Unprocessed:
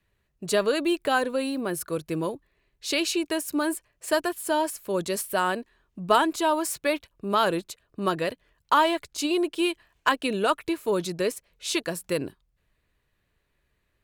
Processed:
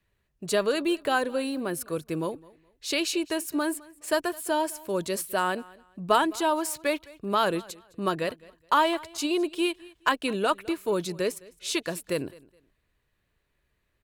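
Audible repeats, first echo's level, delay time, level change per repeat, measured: 2, −22.5 dB, 210 ms, −12.0 dB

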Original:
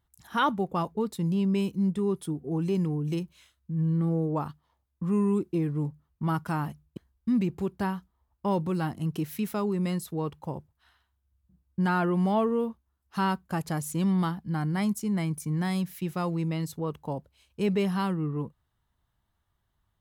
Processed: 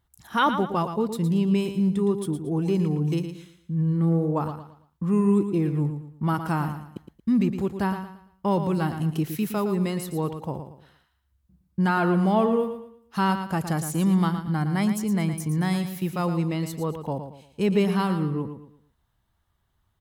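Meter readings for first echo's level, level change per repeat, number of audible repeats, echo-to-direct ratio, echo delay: −9.0 dB, −9.5 dB, 3, −8.5 dB, 114 ms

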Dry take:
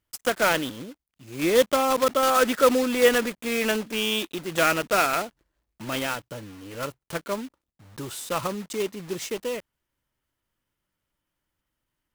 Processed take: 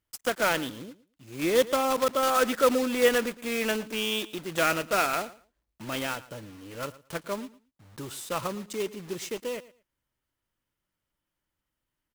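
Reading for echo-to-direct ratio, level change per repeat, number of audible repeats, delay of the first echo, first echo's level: −18.5 dB, −14.5 dB, 2, 113 ms, −18.5 dB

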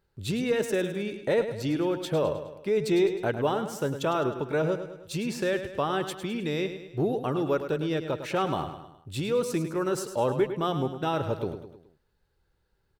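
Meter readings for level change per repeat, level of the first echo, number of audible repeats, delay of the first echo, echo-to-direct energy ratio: −6.0 dB, −10.0 dB, 4, 104 ms, −9.0 dB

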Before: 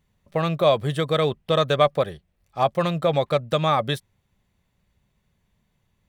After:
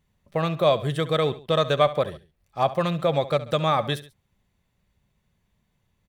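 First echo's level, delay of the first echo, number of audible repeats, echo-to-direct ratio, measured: −16.0 dB, 69 ms, 2, −15.0 dB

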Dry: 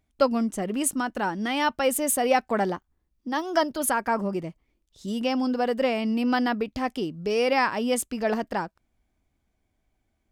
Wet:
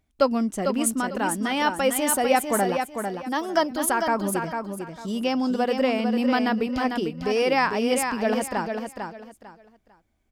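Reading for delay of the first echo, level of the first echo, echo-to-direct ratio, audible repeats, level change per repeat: 449 ms, −6.0 dB, −5.5 dB, 3, −12.0 dB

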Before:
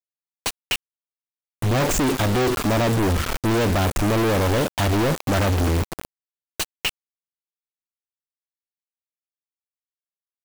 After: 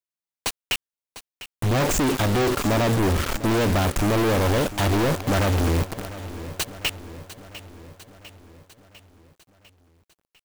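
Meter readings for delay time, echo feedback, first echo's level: 700 ms, 58%, −15.0 dB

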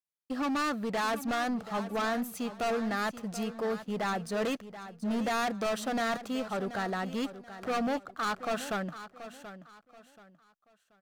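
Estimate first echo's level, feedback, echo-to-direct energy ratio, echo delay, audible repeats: −13.0 dB, 30%, −12.5 dB, 731 ms, 3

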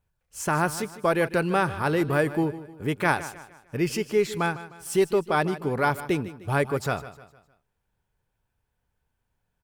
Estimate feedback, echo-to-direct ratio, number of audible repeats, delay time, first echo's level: 41%, −14.0 dB, 3, 153 ms, −15.0 dB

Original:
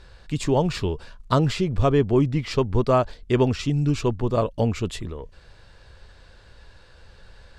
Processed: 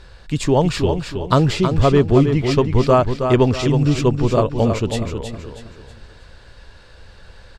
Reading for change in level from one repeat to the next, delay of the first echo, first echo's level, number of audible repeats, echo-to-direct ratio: −8.5 dB, 320 ms, −7.0 dB, 4, −6.5 dB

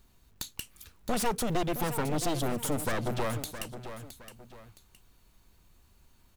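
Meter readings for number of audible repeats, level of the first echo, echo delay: 2, −11.0 dB, 666 ms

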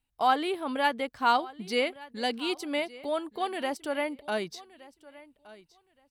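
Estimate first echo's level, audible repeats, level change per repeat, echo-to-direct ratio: −20.0 dB, 2, −15.0 dB, −20.0 dB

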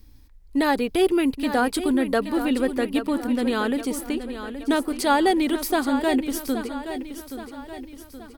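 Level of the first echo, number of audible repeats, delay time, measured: −10.5 dB, 4, 824 ms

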